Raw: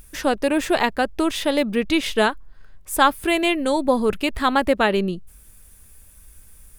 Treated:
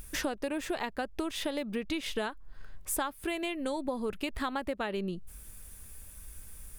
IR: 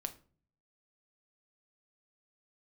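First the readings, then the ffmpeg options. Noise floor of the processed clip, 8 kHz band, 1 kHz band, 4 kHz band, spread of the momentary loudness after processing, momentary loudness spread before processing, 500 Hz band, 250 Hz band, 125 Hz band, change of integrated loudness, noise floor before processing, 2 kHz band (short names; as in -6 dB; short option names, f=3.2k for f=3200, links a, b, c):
-50 dBFS, -7.0 dB, -16.0 dB, -13.0 dB, 15 LU, 5 LU, -14.0 dB, -13.0 dB, -11.0 dB, -14.0 dB, -49 dBFS, -14.5 dB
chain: -af "acompressor=threshold=-30dB:ratio=12"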